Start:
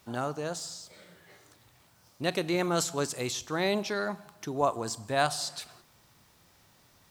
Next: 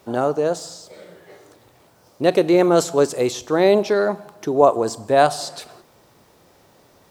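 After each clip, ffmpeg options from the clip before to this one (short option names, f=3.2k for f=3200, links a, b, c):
-af "equalizer=f=460:w=0.7:g=13,volume=3.5dB"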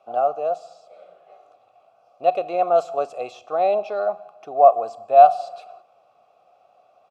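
-filter_complex "[0:a]asplit=3[a][b][c];[a]bandpass=f=730:t=q:w=8,volume=0dB[d];[b]bandpass=f=1.09k:t=q:w=8,volume=-6dB[e];[c]bandpass=f=2.44k:t=q:w=8,volume=-9dB[f];[d][e][f]amix=inputs=3:normalize=0,aecho=1:1:1.5:0.48,volume=4.5dB"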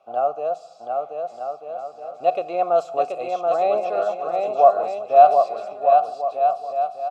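-af "aecho=1:1:730|1241|1599|1849|2024:0.631|0.398|0.251|0.158|0.1,volume=-1dB"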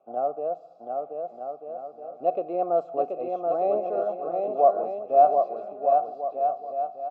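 -af "bandpass=f=280:t=q:w=1.3:csg=0,volume=3.5dB"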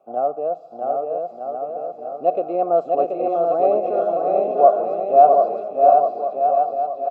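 -af "aecho=1:1:649:0.668,volume=5.5dB"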